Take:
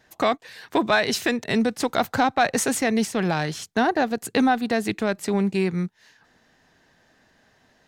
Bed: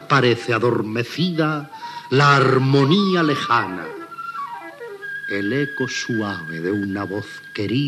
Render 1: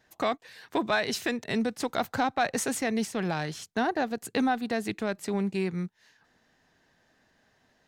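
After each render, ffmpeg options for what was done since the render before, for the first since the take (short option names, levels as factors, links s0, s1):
-af "volume=0.473"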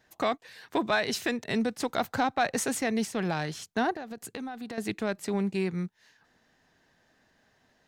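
-filter_complex "[0:a]asettb=1/sr,asplit=3[s0][s1][s2];[s0]atrim=end=3.964[s3];[s1]atrim=start=3.96:end=4.78,asetpts=PTS-STARTPTS,afade=t=in:d=0.004:c=qsin,afade=t=out:st=0.816:d=0.004:c=qsin,acompressor=threshold=0.0178:ratio=6:attack=3.2:release=140:knee=1:detection=peak[s4];[s2]atrim=start=4.776[s5];[s3][s4]acrossfade=d=0.004:c1=hsin:c2=qsin[s6];[s6][s5]acrossfade=d=0.004:c1=qsin:c2=hsin"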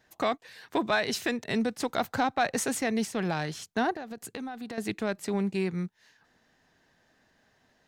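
-af anull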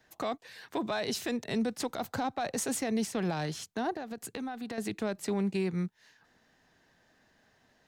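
-filter_complex "[0:a]acrossover=split=120|1300|2600[s0][s1][s2][s3];[s2]acompressor=threshold=0.00447:ratio=6[s4];[s0][s1][s4][s3]amix=inputs=4:normalize=0,alimiter=limit=0.0708:level=0:latency=1:release=59"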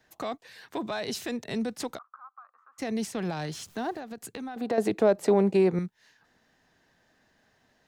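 -filter_complex "[0:a]asplit=3[s0][s1][s2];[s0]afade=t=out:st=1.97:d=0.02[s3];[s1]asuperpass=centerf=1200:order=4:qfactor=5.5,afade=t=in:st=1.97:d=0.02,afade=t=out:st=2.78:d=0.02[s4];[s2]afade=t=in:st=2.78:d=0.02[s5];[s3][s4][s5]amix=inputs=3:normalize=0,asettb=1/sr,asplit=3[s6][s7][s8];[s6]atrim=end=3.524[s9];[s7]atrim=start=3.52:end=4,asetpts=PTS-STARTPTS,afade=t=in:d=0.004:c=qsin,afade=t=out:st=0.476:d=0.004:c=qsin,aeval=exprs='val(0)+0.5*0.00299*sgn(val(0))':c=same[s10];[s8]atrim=start=3.996[s11];[s9][s10]acrossfade=d=0.004:c1=hsin:c2=qsin[s12];[s12][s11]acrossfade=d=0.004:c1=qsin:c2=hsin,asettb=1/sr,asplit=3[s13][s14][s15];[s13]atrim=end=4.564[s16];[s14]atrim=start=4.56:end=5.79,asetpts=PTS-STARTPTS,afade=t=in:d=0.004:c=qsin,afade=t=out:st=1.226:d=0.004:c=qsin,equalizer=f=560:t=o:w=2.1:g=15[s17];[s15]atrim=start=5.786[s18];[s16][s17]acrossfade=d=0.004:c1=hsin:c2=qsin[s19];[s19][s18]acrossfade=d=0.004:c1=qsin:c2=hsin"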